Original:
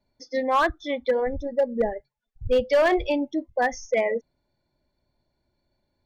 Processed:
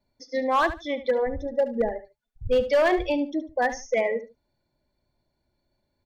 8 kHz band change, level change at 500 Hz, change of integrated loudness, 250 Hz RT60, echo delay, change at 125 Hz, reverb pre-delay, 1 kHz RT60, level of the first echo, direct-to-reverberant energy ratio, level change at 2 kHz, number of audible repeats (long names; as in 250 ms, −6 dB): can't be measured, −0.5 dB, −0.5 dB, no reverb audible, 73 ms, −0.5 dB, no reverb audible, no reverb audible, −13.0 dB, no reverb audible, −1.0 dB, 2